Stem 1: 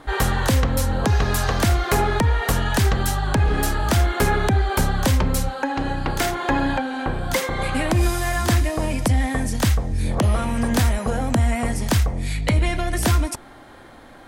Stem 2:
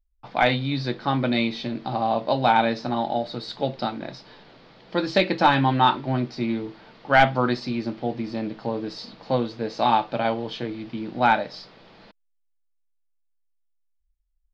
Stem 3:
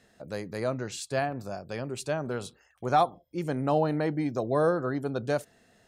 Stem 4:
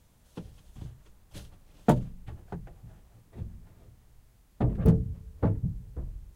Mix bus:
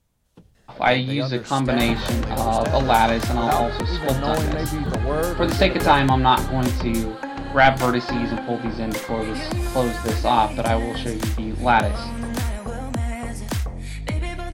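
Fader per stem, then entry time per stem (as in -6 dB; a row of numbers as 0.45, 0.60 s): -6.5, +2.0, +0.5, -7.0 dB; 1.60, 0.45, 0.55, 0.00 s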